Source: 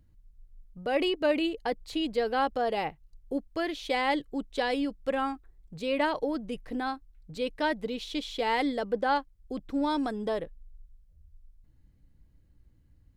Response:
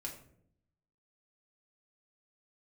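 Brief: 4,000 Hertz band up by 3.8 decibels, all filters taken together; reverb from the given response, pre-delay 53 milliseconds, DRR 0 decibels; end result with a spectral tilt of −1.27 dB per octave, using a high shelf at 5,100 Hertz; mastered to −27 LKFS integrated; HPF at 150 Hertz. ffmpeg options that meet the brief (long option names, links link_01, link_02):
-filter_complex "[0:a]highpass=150,equalizer=frequency=4000:width_type=o:gain=7.5,highshelf=frequency=5100:gain=-5.5,asplit=2[link_01][link_02];[1:a]atrim=start_sample=2205,adelay=53[link_03];[link_02][link_03]afir=irnorm=-1:irlink=0,volume=2dB[link_04];[link_01][link_04]amix=inputs=2:normalize=0,volume=-0.5dB"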